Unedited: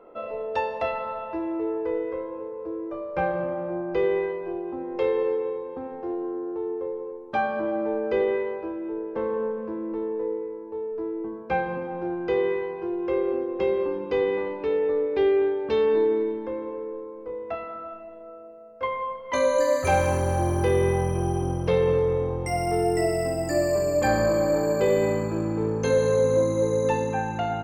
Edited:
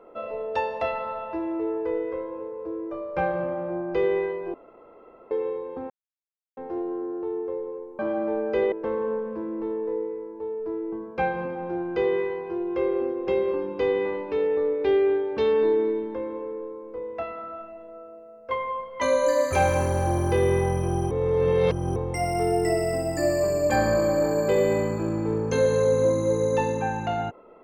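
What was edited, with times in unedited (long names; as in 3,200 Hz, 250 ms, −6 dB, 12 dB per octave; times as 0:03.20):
0:04.54–0:05.31: fill with room tone
0:05.90: splice in silence 0.67 s
0:07.32–0:07.57: remove
0:08.30–0:09.04: remove
0:21.43–0:22.28: reverse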